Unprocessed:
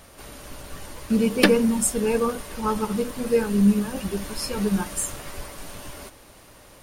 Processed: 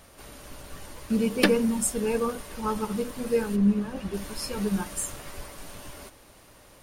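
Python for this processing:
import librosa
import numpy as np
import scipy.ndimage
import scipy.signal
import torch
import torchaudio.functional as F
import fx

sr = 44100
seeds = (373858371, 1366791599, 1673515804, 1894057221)

y = fx.lowpass(x, sr, hz=fx.line((3.55, 1600.0), (4.13, 3400.0)), slope=6, at=(3.55, 4.13), fade=0.02)
y = F.gain(torch.from_numpy(y), -4.0).numpy()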